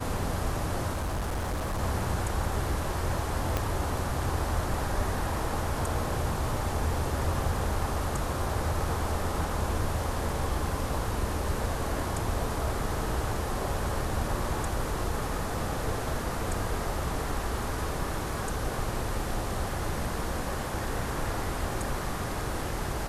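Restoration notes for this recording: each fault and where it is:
0.92–1.8 clipped -27 dBFS
3.57 pop -13 dBFS

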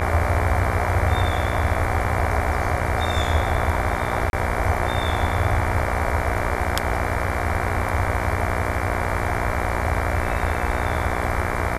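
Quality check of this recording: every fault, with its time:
buzz 60 Hz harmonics 39 -27 dBFS
4.3–4.33 gap 31 ms

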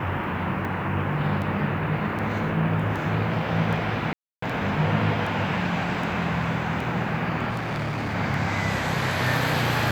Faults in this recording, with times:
tick 78 rpm -21 dBFS
4.13–4.42 gap 0.294 s
7.49–8.15 clipped -24.5 dBFS

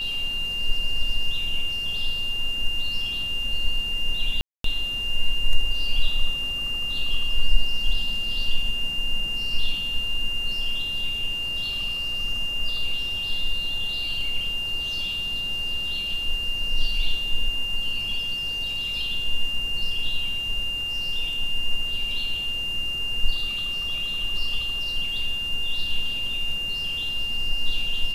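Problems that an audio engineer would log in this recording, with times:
tone 2800 Hz -26 dBFS
4.41–4.64 gap 0.233 s

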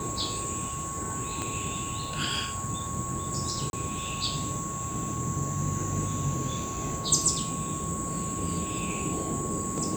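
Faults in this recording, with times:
tone 1100 Hz -36 dBFS
1.42 pop -17 dBFS
3.7–3.73 gap 31 ms

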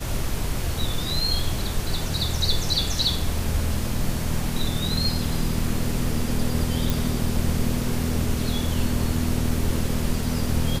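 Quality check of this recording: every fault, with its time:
6.9 pop

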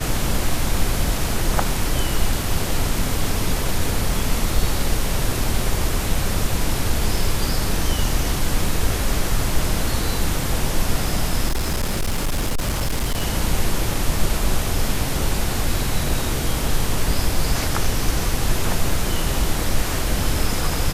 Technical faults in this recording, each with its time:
11.48–13.23 clipped -17 dBFS

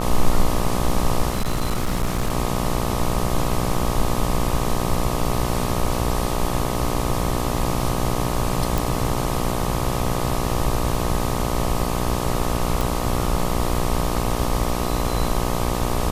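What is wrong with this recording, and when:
buzz 60 Hz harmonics 21 -25 dBFS
1.3–2.32 clipped -17 dBFS
8.78 pop
12.81 pop

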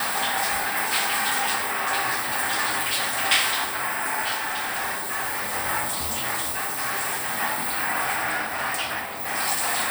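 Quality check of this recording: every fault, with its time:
4.34–5.55 clipped -23.5 dBFS
6.51–7.39 clipped -23 dBFS

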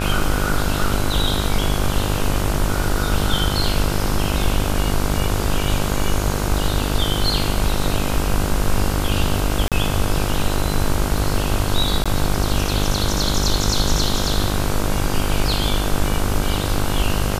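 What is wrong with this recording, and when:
buzz 50 Hz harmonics 32 -23 dBFS
9.68–9.72 gap 37 ms
12.04–12.06 gap 16 ms

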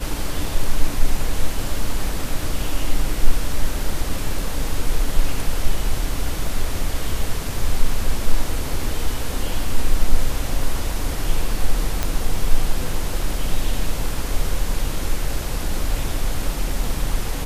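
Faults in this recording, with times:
12.03 pop -6 dBFS

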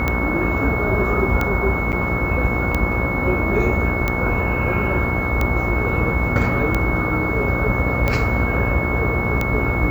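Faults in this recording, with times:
buzz 60 Hz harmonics 23 -25 dBFS
tick 45 rpm -7 dBFS
tone 2200 Hz -24 dBFS
1.92–1.93 gap 7.9 ms

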